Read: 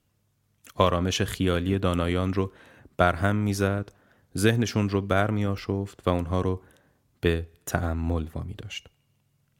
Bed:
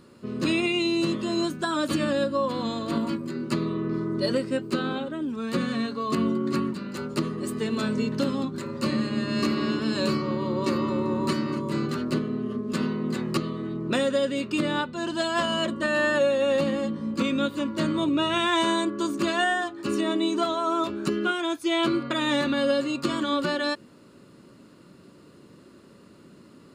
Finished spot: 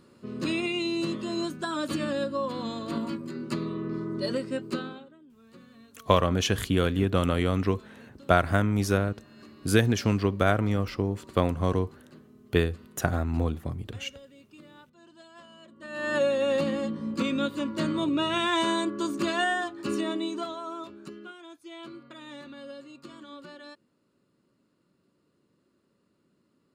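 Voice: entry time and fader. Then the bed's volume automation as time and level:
5.30 s, 0.0 dB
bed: 0:04.76 −4.5 dB
0:05.22 −25.5 dB
0:15.68 −25.5 dB
0:16.16 −2.5 dB
0:19.92 −2.5 dB
0:21.34 −19.5 dB

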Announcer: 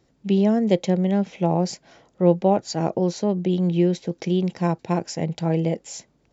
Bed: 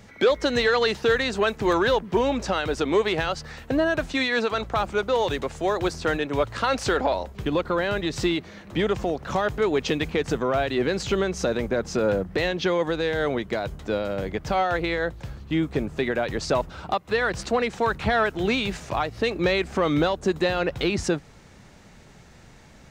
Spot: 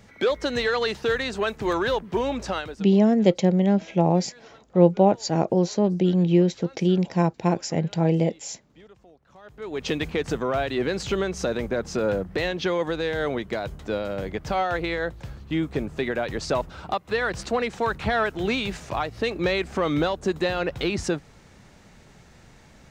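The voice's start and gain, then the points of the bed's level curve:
2.55 s, +1.0 dB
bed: 0:02.58 −3 dB
0:02.96 −27 dB
0:09.35 −27 dB
0:09.88 −1.5 dB

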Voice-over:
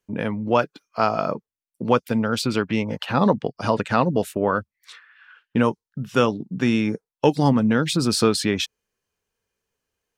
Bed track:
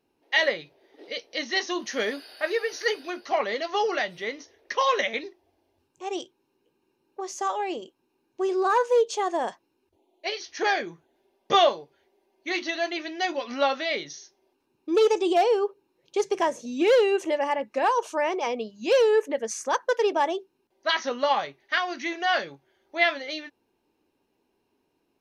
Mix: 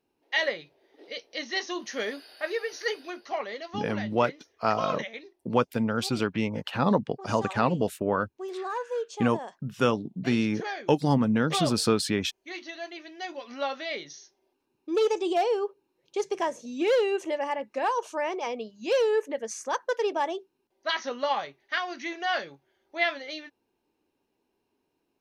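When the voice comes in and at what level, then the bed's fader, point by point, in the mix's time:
3.65 s, −5.0 dB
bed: 0:03.05 −4 dB
0:03.85 −10.5 dB
0:13.09 −10.5 dB
0:14.19 −4 dB

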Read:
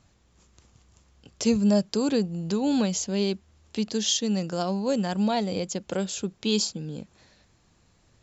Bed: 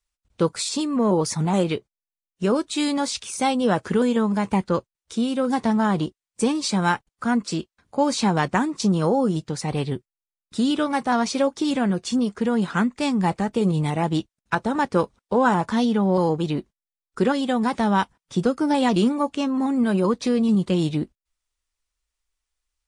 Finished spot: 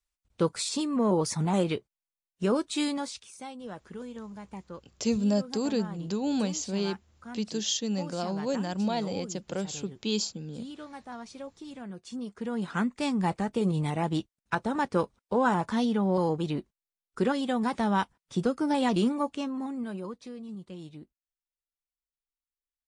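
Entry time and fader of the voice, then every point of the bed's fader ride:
3.60 s, −4.5 dB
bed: 0:02.82 −5 dB
0:03.47 −20.5 dB
0:11.77 −20.5 dB
0:12.88 −6 dB
0:19.23 −6 dB
0:20.37 −21.5 dB

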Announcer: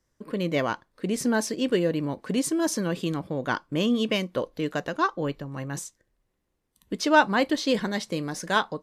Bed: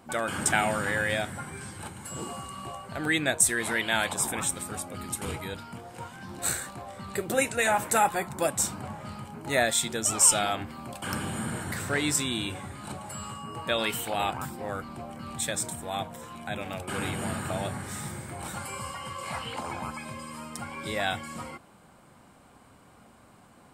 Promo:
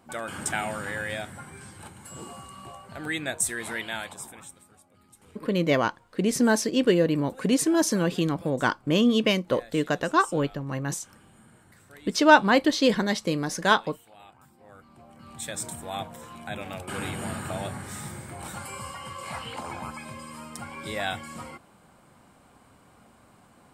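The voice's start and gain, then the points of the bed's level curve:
5.15 s, +3.0 dB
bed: 0:03.81 −4.5 dB
0:04.78 −22.5 dB
0:14.36 −22.5 dB
0:15.70 −1 dB

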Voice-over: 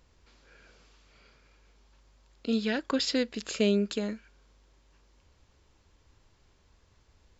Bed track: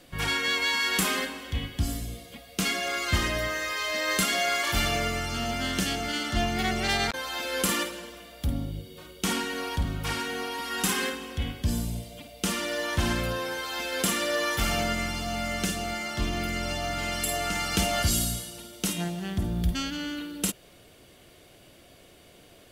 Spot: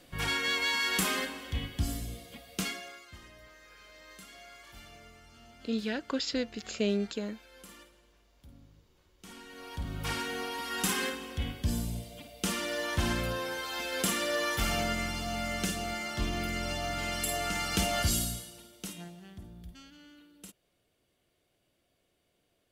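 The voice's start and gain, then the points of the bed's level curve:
3.20 s, −4.0 dB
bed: 0:02.56 −3.5 dB
0:03.11 −25.5 dB
0:09.15 −25.5 dB
0:10.04 −3.5 dB
0:18.12 −3.5 dB
0:19.65 −21.5 dB

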